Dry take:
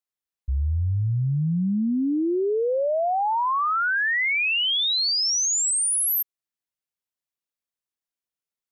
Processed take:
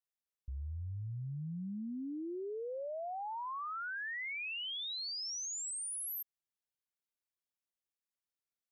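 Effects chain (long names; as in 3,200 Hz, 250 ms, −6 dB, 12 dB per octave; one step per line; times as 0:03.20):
brickwall limiter −30.5 dBFS, peak gain reduction 10.5 dB
level −7 dB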